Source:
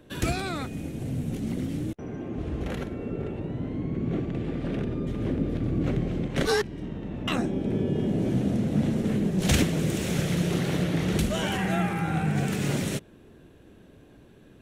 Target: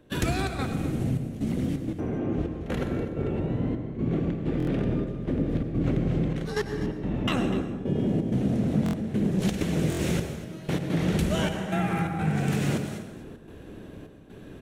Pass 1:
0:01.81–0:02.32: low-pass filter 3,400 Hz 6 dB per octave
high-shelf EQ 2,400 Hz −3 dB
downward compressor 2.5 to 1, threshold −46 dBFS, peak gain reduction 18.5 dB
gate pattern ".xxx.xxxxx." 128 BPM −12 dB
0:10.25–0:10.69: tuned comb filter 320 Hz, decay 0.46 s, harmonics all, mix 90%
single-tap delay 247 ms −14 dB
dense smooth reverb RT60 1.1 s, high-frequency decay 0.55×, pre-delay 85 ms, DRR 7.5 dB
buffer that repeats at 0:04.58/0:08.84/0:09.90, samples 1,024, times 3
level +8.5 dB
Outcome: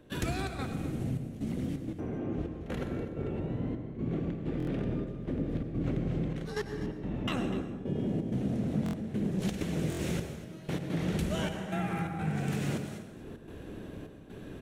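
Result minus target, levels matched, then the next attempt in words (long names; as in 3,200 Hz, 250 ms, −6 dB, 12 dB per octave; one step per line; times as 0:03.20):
downward compressor: peak gain reduction +6.5 dB
0:01.81–0:02.32: low-pass filter 3,400 Hz 6 dB per octave
high-shelf EQ 2,400 Hz −3 dB
downward compressor 2.5 to 1, threshold −35.5 dBFS, peak gain reduction 12 dB
gate pattern ".xxx.xxxxx." 128 BPM −12 dB
0:10.25–0:10.69: tuned comb filter 320 Hz, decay 0.46 s, harmonics all, mix 90%
single-tap delay 247 ms −14 dB
dense smooth reverb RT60 1.1 s, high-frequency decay 0.55×, pre-delay 85 ms, DRR 7.5 dB
buffer that repeats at 0:04.58/0:08.84/0:09.90, samples 1,024, times 3
level +8.5 dB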